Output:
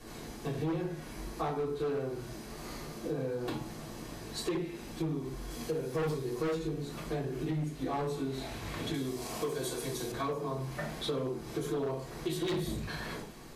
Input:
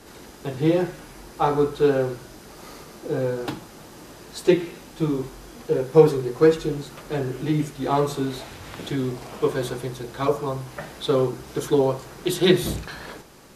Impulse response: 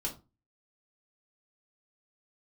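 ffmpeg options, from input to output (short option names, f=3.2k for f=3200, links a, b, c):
-filter_complex "[0:a]asettb=1/sr,asplit=3[a][b][c];[a]atrim=end=5.504[d];[b]atrim=start=5.5:end=6.55,asetpts=PTS-STARTPTS,afade=t=in:d=0.004:c=qsin,afade=t=out:st=1.046:d=0.004:c=qsin,highshelf=f=3.4k:g=7.5[e];[c]atrim=start=6.546[f];[d][e]acrossfade=d=0.004:c1=hsin:c2=qsin[g];[g][f]acrossfade=d=0.004:c1=qsin:c2=hsin[h];[1:a]atrim=start_sample=2205,afade=t=out:st=0.14:d=0.01,atrim=end_sample=6615,asetrate=32193,aresample=44100[i];[h][i]afir=irnorm=-1:irlink=0,asoftclip=type=hard:threshold=-11.5dB,asettb=1/sr,asplit=3[j][k][l];[j]atrim=end=8.944[m];[k]atrim=start=8.94:end=10.12,asetpts=PTS-STARTPTS,afade=t=in:d=0.004:c=qsin,afade=t=out:st=1.176:d=0.004:c=qsin,bass=f=250:g=-4,treble=f=4k:g=10[n];[l]atrim=start=10.116[o];[m][n]acrossfade=d=0.004:c1=hsin:c2=qsin[p];[p][o]acrossfade=d=0.004:c1=qsin:c2=hsin,acompressor=threshold=-26dB:ratio=6,volume=-6dB"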